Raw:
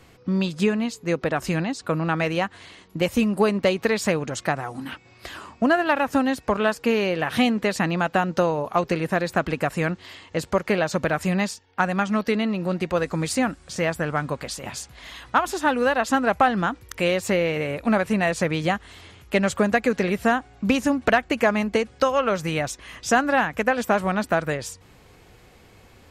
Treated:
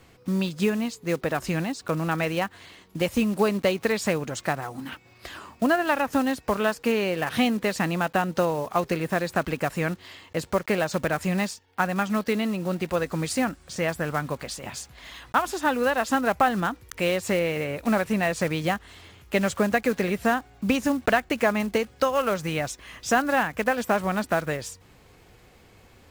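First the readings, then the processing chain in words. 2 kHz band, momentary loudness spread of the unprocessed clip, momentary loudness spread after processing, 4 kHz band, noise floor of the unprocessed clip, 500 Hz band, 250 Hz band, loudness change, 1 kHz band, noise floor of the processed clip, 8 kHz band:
-2.5 dB, 9 LU, 9 LU, -2.0 dB, -52 dBFS, -2.5 dB, -2.5 dB, -2.5 dB, -2.5 dB, -55 dBFS, -1.5 dB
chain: block-companded coder 5-bit; trim -2.5 dB

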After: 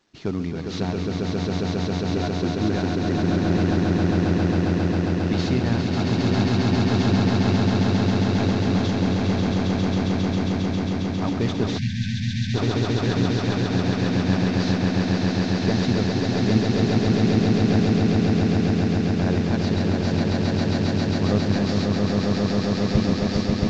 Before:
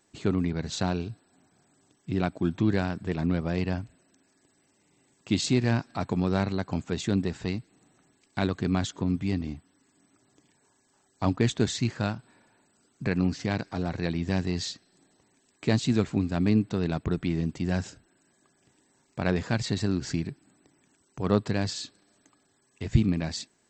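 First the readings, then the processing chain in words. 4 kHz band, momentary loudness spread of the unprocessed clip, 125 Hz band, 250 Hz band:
+7.5 dB, 10 LU, +8.5 dB, +8.5 dB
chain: CVSD coder 32 kbps; echo with a slow build-up 135 ms, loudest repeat 8, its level -3 dB; spectral selection erased 11.78–12.55 s, 240–1500 Hz

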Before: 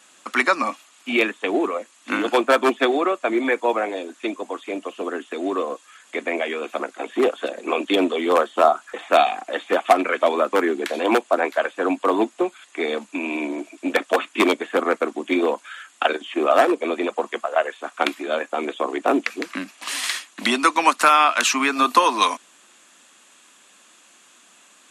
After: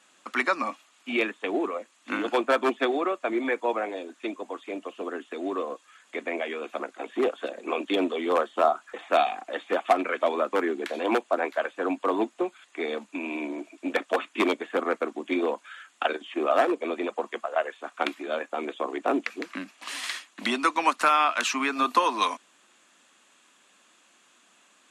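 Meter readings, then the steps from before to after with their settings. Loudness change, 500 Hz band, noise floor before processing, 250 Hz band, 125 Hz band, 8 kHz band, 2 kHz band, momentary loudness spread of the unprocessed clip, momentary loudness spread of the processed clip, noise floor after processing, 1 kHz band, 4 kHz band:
-6.5 dB, -6.0 dB, -54 dBFS, -6.0 dB, no reading, -10.0 dB, -6.5 dB, 12 LU, 12 LU, -62 dBFS, -6.0 dB, -7.5 dB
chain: treble shelf 6.7 kHz -8 dB; trim -6 dB

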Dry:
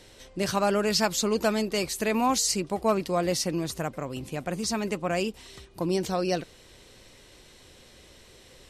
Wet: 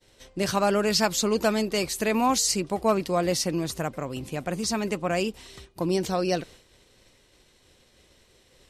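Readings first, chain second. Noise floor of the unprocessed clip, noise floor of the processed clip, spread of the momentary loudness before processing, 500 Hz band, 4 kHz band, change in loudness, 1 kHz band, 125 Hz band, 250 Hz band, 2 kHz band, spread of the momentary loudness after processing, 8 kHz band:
-54 dBFS, -61 dBFS, 10 LU, +1.5 dB, +1.5 dB, +1.5 dB, +1.5 dB, +1.5 dB, +1.5 dB, +1.5 dB, 10 LU, +1.5 dB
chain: expander -45 dBFS; trim +1.5 dB

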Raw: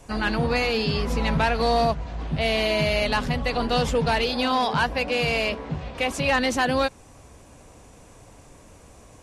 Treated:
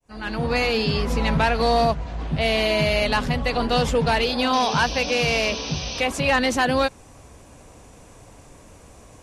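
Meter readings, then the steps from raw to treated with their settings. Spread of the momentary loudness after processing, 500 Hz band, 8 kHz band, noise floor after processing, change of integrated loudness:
5 LU, +2.0 dB, +5.0 dB, -48 dBFS, +2.0 dB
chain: fade-in on the opening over 0.61 s; painted sound noise, 4.53–6.01 s, 2.3–6.3 kHz -35 dBFS; trim +2 dB

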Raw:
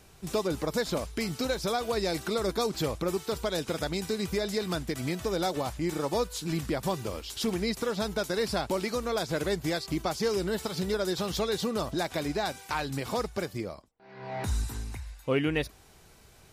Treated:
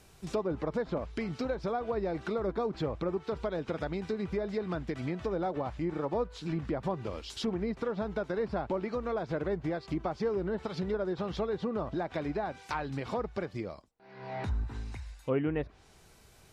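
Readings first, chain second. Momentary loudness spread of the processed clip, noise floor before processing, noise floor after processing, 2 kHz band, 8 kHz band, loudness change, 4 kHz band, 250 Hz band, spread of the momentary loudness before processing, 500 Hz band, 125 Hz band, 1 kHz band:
5 LU, -56 dBFS, -59 dBFS, -7.0 dB, -18.0 dB, -3.5 dB, -13.0 dB, -2.5 dB, 5 LU, -2.5 dB, -2.5 dB, -3.5 dB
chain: low-pass that closes with the level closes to 1.3 kHz, closed at -25.5 dBFS; trim -2.5 dB

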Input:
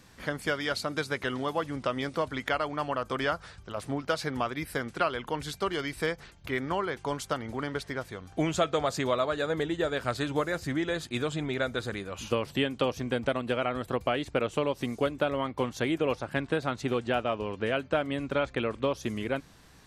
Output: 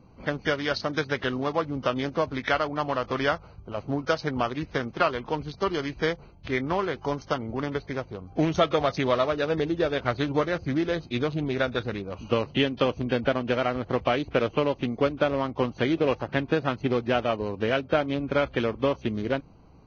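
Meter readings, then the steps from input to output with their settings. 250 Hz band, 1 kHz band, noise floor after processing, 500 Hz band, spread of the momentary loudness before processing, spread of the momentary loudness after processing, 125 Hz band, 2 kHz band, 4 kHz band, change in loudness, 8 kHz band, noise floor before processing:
+4.5 dB, +3.5 dB, -51 dBFS, +4.0 dB, 6 LU, 6 LU, +4.5 dB, +2.5 dB, +2.5 dB, +4.0 dB, no reading, -54 dBFS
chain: local Wiener filter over 25 samples; trim +4.5 dB; Vorbis 16 kbps 16 kHz

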